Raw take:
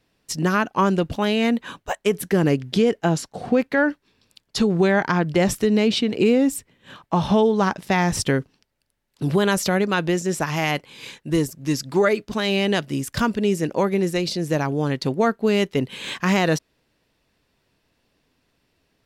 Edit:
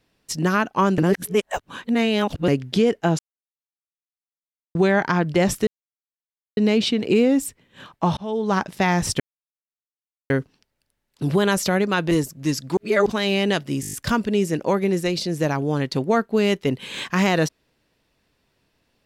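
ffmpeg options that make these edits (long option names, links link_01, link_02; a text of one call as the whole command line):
ffmpeg -i in.wav -filter_complex "[0:a]asplit=17[link_01][link_02][link_03][link_04][link_05][link_06][link_07][link_08][link_09][link_10][link_11][link_12][link_13][link_14][link_15][link_16][link_17];[link_01]atrim=end=0.982[link_18];[link_02]atrim=start=0.978:end=2.482,asetpts=PTS-STARTPTS,areverse[link_19];[link_03]atrim=start=2.478:end=3.19,asetpts=PTS-STARTPTS,afade=type=out:start_time=0.708:duration=0.004:curve=hsin[link_20];[link_04]atrim=start=3.19:end=4.75,asetpts=PTS-STARTPTS,volume=0[link_21];[link_05]atrim=start=4.75:end=5.67,asetpts=PTS-STARTPTS,afade=type=in:duration=0.004:curve=hsin,afade=type=out:start_time=0.916:duration=0.004:curve=hsin,apad=pad_dur=0.9[link_22];[link_06]atrim=start=5.67:end=7.27,asetpts=PTS-STARTPTS,afade=type=in:duration=0.004:curve=hsin,afade=type=out:start_time=1.596:duration=0.004:curve=hsin[link_23];[link_07]atrim=start=7.27:end=8.3,asetpts=PTS-STARTPTS,afade=type=in:duration=0.41,afade=type=out:start_time=1.026:duration=0.004:curve=hsin,apad=pad_dur=1.1[link_24];[link_08]atrim=start=8.3:end=10.112,asetpts=PTS-STARTPTS,afade=type=in:duration=0.004:curve=hsin[link_25];[link_09]atrim=start=11.328:end=11.992[link_26];[link_10]atrim=start=11.988:end=12.282,asetpts=PTS-STARTPTS,areverse[link_27];[link_11]atrim=start=12.278:end=13.052[link_28];[link_12]atrim=start=13.028:end=13.052[link_29];[link_13]atrim=start=13.028:end=13.052[link_30];[link_14]atrim=start=13.028:end=13.052[link_31];[link_15]atrim=start=13.028:end=13.052[link_32];[link_16]atrim=start=13.028:end=13.052[link_33];[link_17]atrim=start=13.028[link_34];[link_18][link_19]acrossfade=duration=0.004:curve1=hsin:curve2=hsin[link_35];[link_20][link_21][link_22][link_23][link_24][link_25]concat=n=6:v=0:a=1[link_36];[link_35][link_36]acrossfade=duration=0.004:curve1=hsin:curve2=hsin[link_37];[link_37][link_26]acrossfade=duration=0.004:curve1=hsin:curve2=hsin[link_38];[link_38][link_27]acrossfade=duration=0.004:curve1=hsin:curve2=hsin[link_39];[link_39][link_28]acrossfade=duration=0.004:curve1=hsin:curve2=hsin[link_40];[link_40][link_29]acrossfade=duration=0.004:curve1=hsin:curve2=hsin[link_41];[link_41][link_30]acrossfade=duration=0.004:curve1=hsin:curve2=hsin[link_42];[link_42][link_31]acrossfade=duration=0.004:curve1=hsin:curve2=hsin[link_43];[link_43][link_32]acrossfade=duration=0.004:curve1=hsin:curve2=hsin[link_44];[link_44][link_33]acrossfade=duration=0.004:curve1=hsin:curve2=hsin[link_45];[link_45][link_34]acrossfade=duration=0.004:curve1=hsin:curve2=hsin" out.wav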